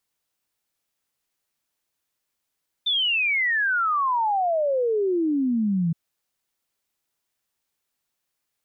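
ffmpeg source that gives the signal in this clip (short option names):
-f lavfi -i "aevalsrc='0.106*clip(min(t,3.07-t)/0.01,0,1)*sin(2*PI*3600*3.07/log(160/3600)*(exp(log(160/3600)*t/3.07)-1))':d=3.07:s=44100"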